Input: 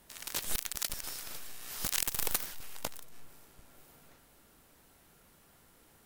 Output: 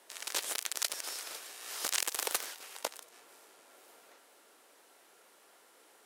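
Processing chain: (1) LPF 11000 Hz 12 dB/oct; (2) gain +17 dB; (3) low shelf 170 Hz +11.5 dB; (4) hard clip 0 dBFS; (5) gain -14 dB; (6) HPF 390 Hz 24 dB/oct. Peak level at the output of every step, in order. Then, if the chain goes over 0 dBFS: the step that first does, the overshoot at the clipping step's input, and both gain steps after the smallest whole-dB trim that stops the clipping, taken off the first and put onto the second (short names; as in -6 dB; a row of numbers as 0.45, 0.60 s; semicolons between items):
-11.5, +5.5, +6.0, 0.0, -14.0, -10.5 dBFS; step 2, 6.0 dB; step 2 +11 dB, step 5 -8 dB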